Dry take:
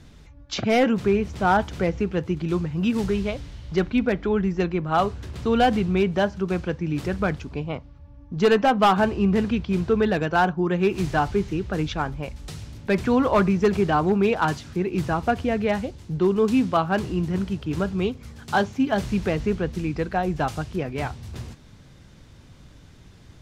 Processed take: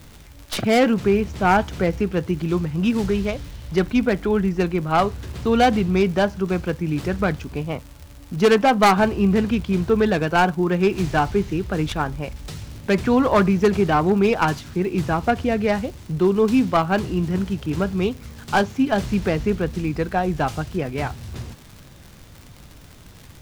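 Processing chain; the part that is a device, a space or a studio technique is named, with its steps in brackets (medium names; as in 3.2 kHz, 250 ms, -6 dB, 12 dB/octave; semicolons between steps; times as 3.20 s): record under a worn stylus (tracing distortion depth 0.11 ms; crackle 130 per s -35 dBFS; pink noise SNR 32 dB); trim +2.5 dB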